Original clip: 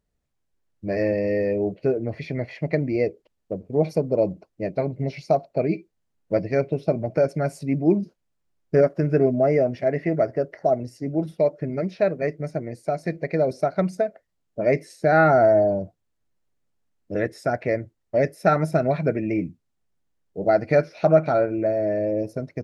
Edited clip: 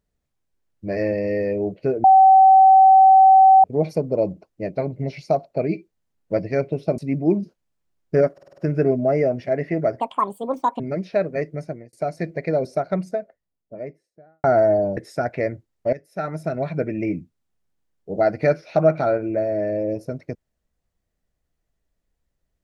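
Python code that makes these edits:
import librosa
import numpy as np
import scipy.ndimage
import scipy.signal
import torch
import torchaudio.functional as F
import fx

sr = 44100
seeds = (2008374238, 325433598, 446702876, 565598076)

y = fx.studio_fade_out(x, sr, start_s=13.41, length_s=1.89)
y = fx.edit(y, sr, fx.bleep(start_s=2.04, length_s=1.6, hz=766.0, db=-7.5),
    fx.cut(start_s=6.98, length_s=0.6),
    fx.stutter(start_s=8.93, slice_s=0.05, count=6),
    fx.speed_span(start_s=10.35, length_s=1.31, speed=1.64),
    fx.fade_out_span(start_s=12.35, length_s=0.44, curve='qsin'),
    fx.cut(start_s=15.83, length_s=1.42),
    fx.fade_in_from(start_s=18.21, length_s=1.1, floor_db=-17.5), tone=tone)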